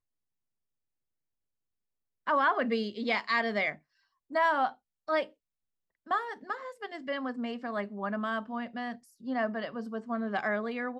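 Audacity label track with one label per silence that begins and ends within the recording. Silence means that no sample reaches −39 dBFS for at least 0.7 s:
5.250000	6.100000	silence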